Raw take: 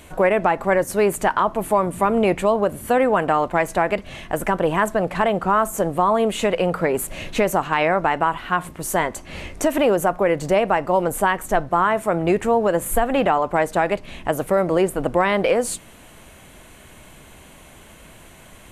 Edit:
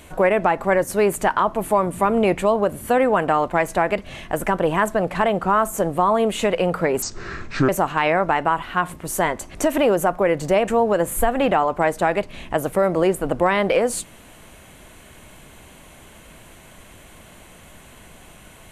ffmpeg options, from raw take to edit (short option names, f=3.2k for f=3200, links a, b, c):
-filter_complex "[0:a]asplit=5[a][b][c][d][e];[a]atrim=end=7.024[f];[b]atrim=start=7.02:end=7.44,asetpts=PTS-STARTPTS,asetrate=27783,aresample=44100[g];[c]atrim=start=7.436:end=9.302[h];[d]atrim=start=9.548:end=10.682[i];[e]atrim=start=12.418[j];[f][g]acrossfade=d=0.004:c1=hsin:c2=hsin[k];[k][h]acrossfade=d=0.004:c1=hsin:c2=hsin[l];[l][i]acrossfade=d=0.004:c1=hsin:c2=hsin[m];[m][j]acrossfade=d=0.004:c1=hsin:c2=hsin"